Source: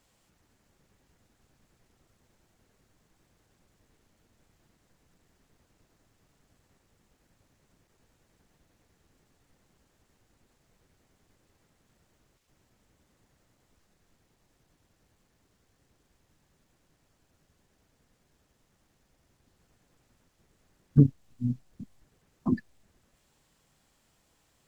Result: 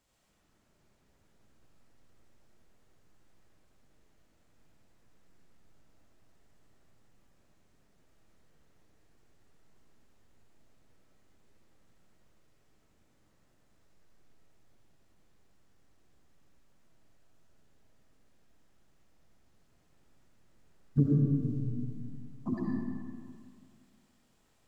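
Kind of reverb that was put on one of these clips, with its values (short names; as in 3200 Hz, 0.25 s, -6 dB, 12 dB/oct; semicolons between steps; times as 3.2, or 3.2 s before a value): digital reverb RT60 2.1 s, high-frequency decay 0.6×, pre-delay 40 ms, DRR -4 dB; gain -7.5 dB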